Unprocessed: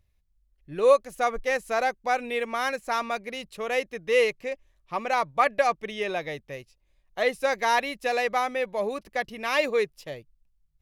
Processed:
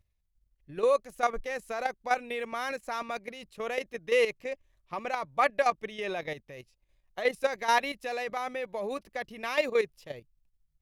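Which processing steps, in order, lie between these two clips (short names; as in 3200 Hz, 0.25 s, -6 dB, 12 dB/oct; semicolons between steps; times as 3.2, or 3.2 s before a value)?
level quantiser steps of 11 dB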